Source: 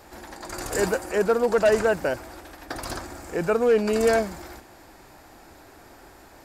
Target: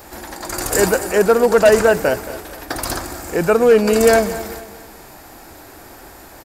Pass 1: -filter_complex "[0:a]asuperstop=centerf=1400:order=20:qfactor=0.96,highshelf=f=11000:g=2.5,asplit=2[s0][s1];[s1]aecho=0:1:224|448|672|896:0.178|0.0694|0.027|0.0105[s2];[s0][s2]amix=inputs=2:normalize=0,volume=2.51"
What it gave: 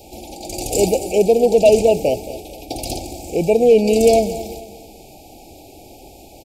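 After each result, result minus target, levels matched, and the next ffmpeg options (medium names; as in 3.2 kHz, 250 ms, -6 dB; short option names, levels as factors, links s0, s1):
1 kHz band -3.0 dB; 8 kHz band -3.0 dB
-filter_complex "[0:a]highshelf=f=11000:g=2.5,asplit=2[s0][s1];[s1]aecho=0:1:224|448|672|896:0.178|0.0694|0.027|0.0105[s2];[s0][s2]amix=inputs=2:normalize=0,volume=2.51"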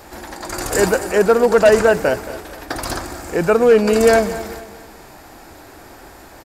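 8 kHz band -3.0 dB
-filter_complex "[0:a]highshelf=f=11000:g=13.5,asplit=2[s0][s1];[s1]aecho=0:1:224|448|672|896:0.178|0.0694|0.027|0.0105[s2];[s0][s2]amix=inputs=2:normalize=0,volume=2.51"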